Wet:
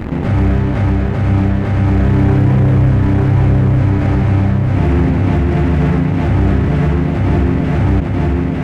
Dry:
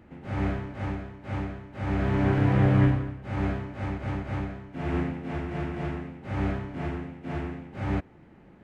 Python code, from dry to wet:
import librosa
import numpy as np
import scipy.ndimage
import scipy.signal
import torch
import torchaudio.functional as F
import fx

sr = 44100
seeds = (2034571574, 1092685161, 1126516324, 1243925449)

p1 = fx.low_shelf(x, sr, hz=270.0, db=9.5)
p2 = fx.leveller(p1, sr, passes=2)
p3 = p2 + fx.echo_feedback(p2, sr, ms=898, feedback_pct=33, wet_db=-4, dry=0)
p4 = fx.env_flatten(p3, sr, amount_pct=70)
y = p4 * 10.0 ** (-3.0 / 20.0)